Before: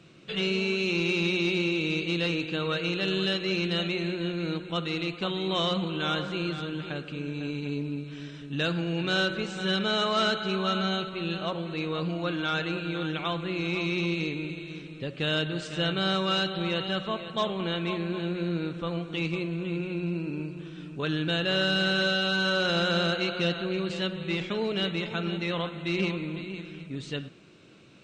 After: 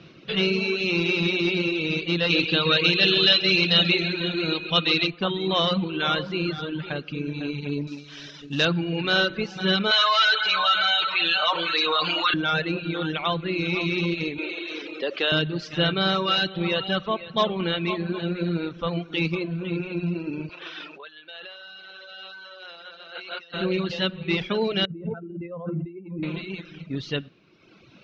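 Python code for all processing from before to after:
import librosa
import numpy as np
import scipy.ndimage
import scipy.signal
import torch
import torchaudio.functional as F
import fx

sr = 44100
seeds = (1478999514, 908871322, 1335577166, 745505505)

y = fx.peak_eq(x, sr, hz=4100.0, db=9.0, octaves=1.6, at=(2.29, 5.06), fade=0.02)
y = fx.dmg_tone(y, sr, hz=2500.0, level_db=-42.0, at=(2.29, 5.06), fade=0.02)
y = fx.echo_feedback(y, sr, ms=134, feedback_pct=49, wet_db=-7.0, at=(2.29, 5.06), fade=0.02)
y = fx.chain(y, sr, fx.cvsd(bps=64000),
    fx.bass_treble(bass_db=-4, treble_db=10), at=(7.87, 8.65))
y = fx.chain(y, sr, fx.highpass(hz=1100.0, slope=12),
    fx.comb(ms=6.6, depth=0.79),
    fx.env_flatten(amount_pct=70), at=(9.91, 12.34))
y = fx.chain(y, sr, fx.highpass(hz=330.0, slope=24),
    fx.env_flatten(amount_pct=50), at=(14.38, 15.32))
y = fx.chain(y, sr, fx.peak_eq(hz=6900.0, db=-6.5, octaves=0.62),
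    fx.over_compress(threshold_db=-40.0, ratio=-1.0),
    fx.highpass(hz=640.0, slope=12), at=(20.49, 23.54))
y = fx.chain(y, sr, fx.spec_expand(power=1.9),
    fx.lowpass(hz=1100.0, slope=12),
    fx.over_compress(threshold_db=-37.0, ratio=-1.0), at=(24.85, 26.23))
y = fx.dereverb_blind(y, sr, rt60_s=1.4)
y = scipy.signal.sosfilt(scipy.signal.butter(8, 5800.0, 'lowpass', fs=sr, output='sos'), y)
y = y * 10.0 ** (6.5 / 20.0)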